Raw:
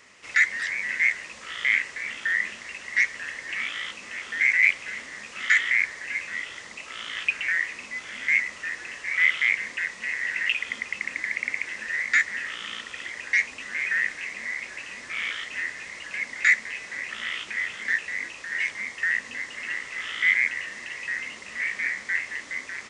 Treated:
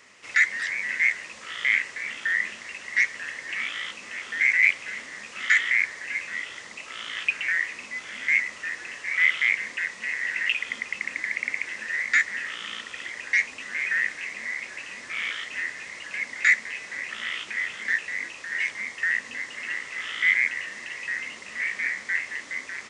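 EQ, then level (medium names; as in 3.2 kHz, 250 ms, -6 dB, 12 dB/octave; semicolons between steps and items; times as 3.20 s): high-pass 90 Hz 6 dB/octave; 0.0 dB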